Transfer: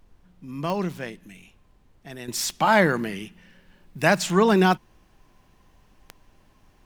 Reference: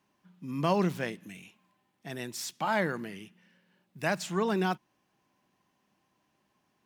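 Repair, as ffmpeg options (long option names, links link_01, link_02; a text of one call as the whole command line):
ffmpeg -i in.wav -af "adeclick=threshold=4,agate=range=-21dB:threshold=-50dB,asetnsamples=nb_out_samples=441:pad=0,asendcmd='2.28 volume volume -10.5dB',volume=0dB" out.wav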